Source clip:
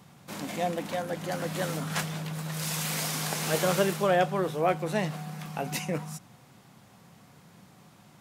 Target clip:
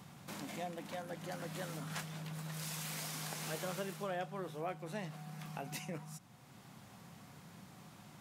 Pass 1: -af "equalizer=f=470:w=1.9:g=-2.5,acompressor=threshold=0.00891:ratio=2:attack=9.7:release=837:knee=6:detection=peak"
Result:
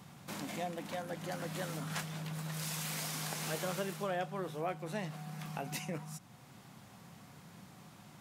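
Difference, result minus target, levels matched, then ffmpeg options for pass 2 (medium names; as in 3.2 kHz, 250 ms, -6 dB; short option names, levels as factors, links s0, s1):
compression: peak gain reduction -3.5 dB
-af "equalizer=f=470:w=1.9:g=-2.5,acompressor=threshold=0.00398:ratio=2:attack=9.7:release=837:knee=6:detection=peak"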